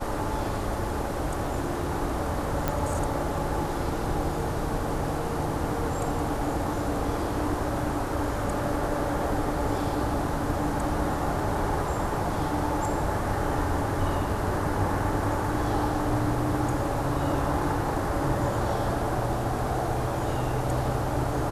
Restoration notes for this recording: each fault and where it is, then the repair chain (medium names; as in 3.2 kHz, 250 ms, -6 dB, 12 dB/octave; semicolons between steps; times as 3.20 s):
2.68 s: pop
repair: de-click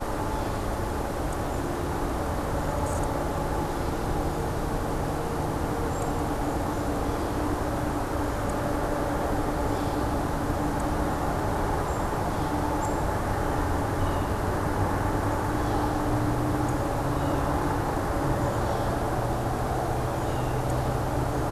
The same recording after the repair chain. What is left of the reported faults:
nothing left